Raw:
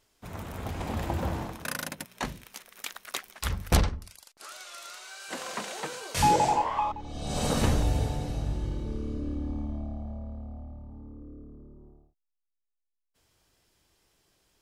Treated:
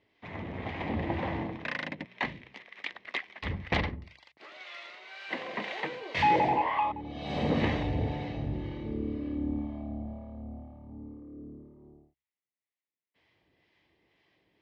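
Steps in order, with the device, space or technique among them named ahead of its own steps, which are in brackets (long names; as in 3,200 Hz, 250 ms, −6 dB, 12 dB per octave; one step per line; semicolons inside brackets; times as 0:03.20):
hum removal 66.13 Hz, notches 2
guitar amplifier with harmonic tremolo (two-band tremolo in antiphase 2 Hz, depth 50%, crossover 650 Hz; soft clipping −20.5 dBFS, distortion −17 dB; loudspeaker in its box 93–3,500 Hz, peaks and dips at 310 Hz +4 dB, 1,400 Hz −10 dB, 2,000 Hz +10 dB)
level +3 dB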